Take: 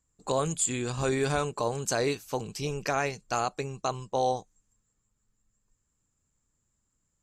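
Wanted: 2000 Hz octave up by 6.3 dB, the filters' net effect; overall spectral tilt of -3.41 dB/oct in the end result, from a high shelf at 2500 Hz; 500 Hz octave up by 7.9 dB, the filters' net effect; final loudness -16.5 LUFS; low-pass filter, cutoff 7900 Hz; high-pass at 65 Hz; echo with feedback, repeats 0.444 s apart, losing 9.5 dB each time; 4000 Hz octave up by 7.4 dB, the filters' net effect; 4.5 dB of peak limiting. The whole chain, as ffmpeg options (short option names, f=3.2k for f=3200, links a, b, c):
-af "highpass=65,lowpass=7.9k,equalizer=f=500:t=o:g=9,equalizer=f=2k:t=o:g=4.5,highshelf=f=2.5k:g=5,equalizer=f=4k:t=o:g=3.5,alimiter=limit=-12dB:level=0:latency=1,aecho=1:1:444|888|1332|1776:0.335|0.111|0.0365|0.012,volume=9dB"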